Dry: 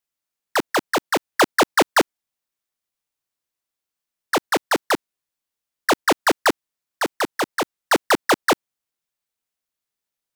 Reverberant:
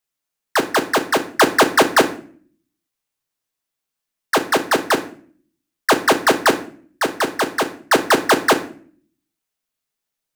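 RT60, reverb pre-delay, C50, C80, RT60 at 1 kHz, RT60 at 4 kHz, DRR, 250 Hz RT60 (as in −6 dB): 0.50 s, 5 ms, 13.5 dB, 18.0 dB, 0.45 s, 0.35 s, 6.0 dB, 0.75 s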